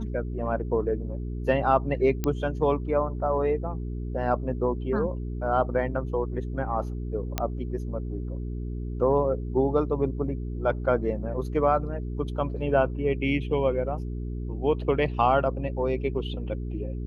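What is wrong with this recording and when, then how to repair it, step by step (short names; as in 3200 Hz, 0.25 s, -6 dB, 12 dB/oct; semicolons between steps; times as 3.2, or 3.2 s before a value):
hum 60 Hz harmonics 7 -32 dBFS
2.24 pop -13 dBFS
7.38 pop -10 dBFS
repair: de-click; de-hum 60 Hz, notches 7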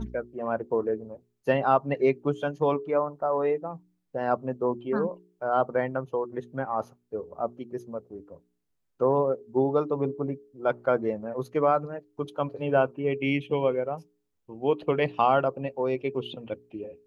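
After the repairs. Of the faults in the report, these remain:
none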